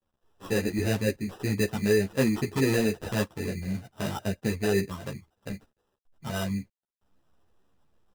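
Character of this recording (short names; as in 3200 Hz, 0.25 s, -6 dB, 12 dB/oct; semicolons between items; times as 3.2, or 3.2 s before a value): a quantiser's noise floor 12-bit, dither none; phasing stages 4, 3.8 Hz, lowest notch 630–2200 Hz; aliases and images of a low sample rate 2200 Hz, jitter 0%; a shimmering, thickened sound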